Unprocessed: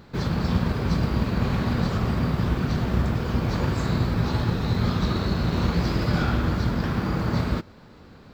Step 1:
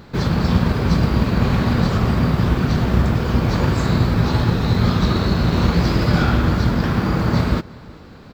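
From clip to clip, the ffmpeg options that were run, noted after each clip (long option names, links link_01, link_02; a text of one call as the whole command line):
ffmpeg -i in.wav -filter_complex "[0:a]asplit=2[link_01][link_02];[link_02]adelay=367.3,volume=-23dB,highshelf=frequency=4000:gain=-8.27[link_03];[link_01][link_03]amix=inputs=2:normalize=0,volume=6.5dB" out.wav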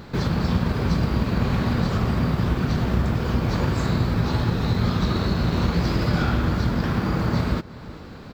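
ffmpeg -i in.wav -af "acompressor=threshold=-31dB:ratio=1.5,volume=1.5dB" out.wav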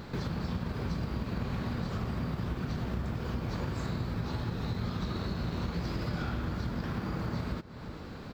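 ffmpeg -i in.wav -af "acompressor=threshold=-35dB:ratio=2,volume=-3dB" out.wav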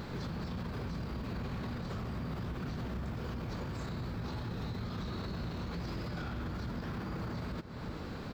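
ffmpeg -i in.wav -af "alimiter=level_in=9dB:limit=-24dB:level=0:latency=1:release=25,volume=-9dB,volume=1.5dB" out.wav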